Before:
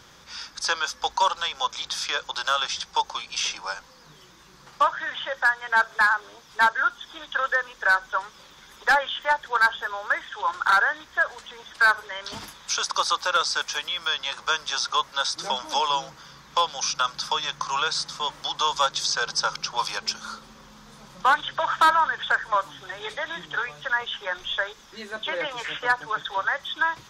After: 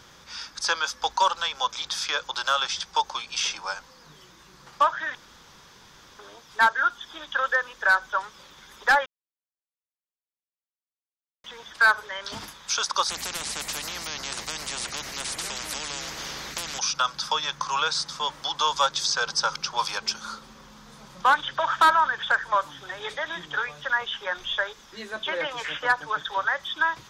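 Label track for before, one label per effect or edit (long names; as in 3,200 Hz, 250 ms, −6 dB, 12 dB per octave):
5.150000	6.190000	fill with room tone
9.060000	11.440000	silence
13.090000	16.790000	every bin compressed towards the loudest bin 10 to 1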